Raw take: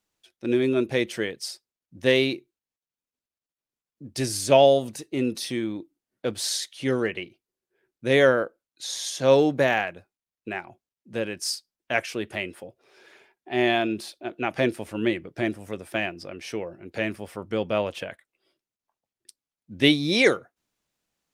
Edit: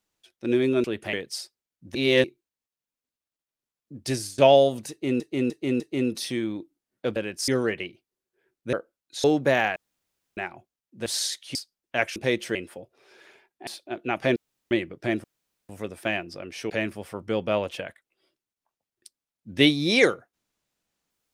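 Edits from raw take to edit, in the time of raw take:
0:00.84–0:01.23: swap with 0:12.12–0:12.41
0:02.05–0:02.34: reverse
0:04.22–0:04.48: fade out, to −23 dB
0:05.00–0:05.30: repeat, 4 plays
0:06.36–0:06.85: swap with 0:11.19–0:11.51
0:08.10–0:08.40: remove
0:08.91–0:09.37: remove
0:09.89–0:10.50: fill with room tone
0:13.53–0:14.01: remove
0:14.70–0:15.05: fill with room tone
0:15.58: splice in room tone 0.45 s
0:16.59–0:16.93: remove

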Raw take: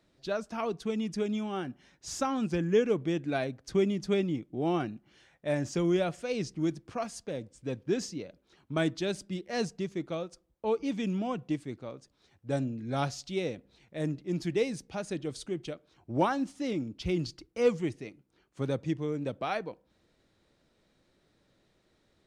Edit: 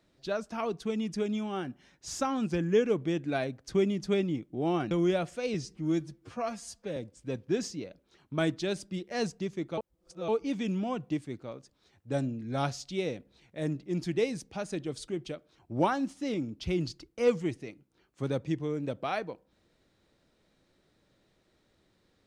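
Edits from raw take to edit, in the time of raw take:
0:04.91–0:05.77: remove
0:06.40–0:07.35: time-stretch 1.5×
0:10.16–0:10.67: reverse

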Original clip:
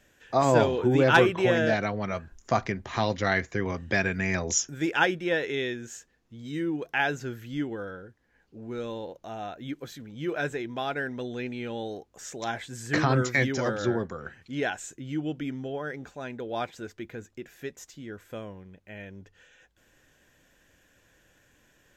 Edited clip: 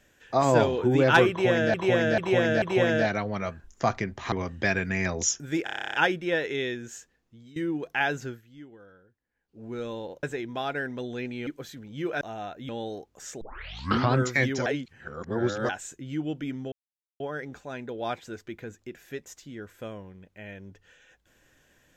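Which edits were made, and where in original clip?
0:01.30–0:01.74: repeat, 4 plays
0:03.00–0:03.61: remove
0:04.93: stutter 0.03 s, 11 plays
0:05.83–0:06.55: fade out equal-power, to −17.5 dB
0:07.25–0:08.63: duck −15.5 dB, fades 0.16 s
0:09.22–0:09.70: swap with 0:10.44–0:11.68
0:12.40: tape start 0.73 s
0:13.65–0:14.68: reverse
0:15.71: splice in silence 0.48 s

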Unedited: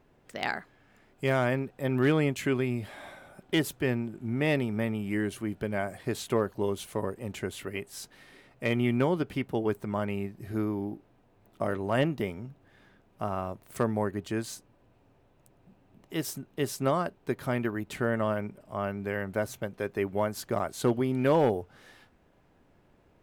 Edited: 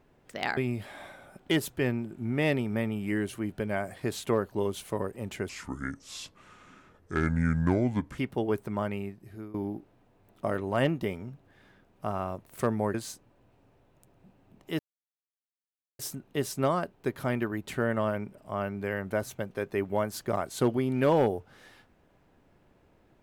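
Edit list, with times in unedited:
0:00.57–0:02.60: remove
0:07.52–0:09.35: play speed 68%
0:09.97–0:10.71: fade out linear, to −18 dB
0:14.11–0:14.37: remove
0:16.22: splice in silence 1.20 s

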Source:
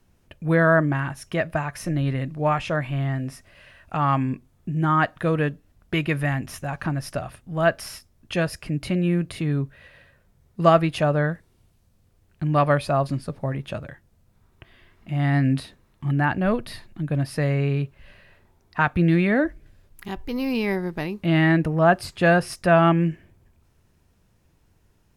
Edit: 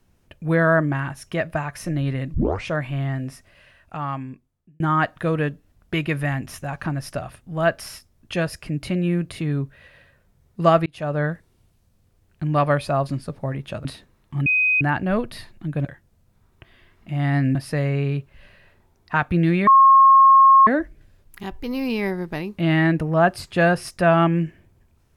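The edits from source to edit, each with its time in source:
0:02.34: tape start 0.33 s
0:03.23–0:04.80: fade out
0:10.86–0:11.24: fade in
0:13.85–0:15.55: move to 0:17.20
0:16.16: insert tone 2,510 Hz −15.5 dBFS 0.35 s
0:19.32: insert tone 1,080 Hz −8 dBFS 1.00 s

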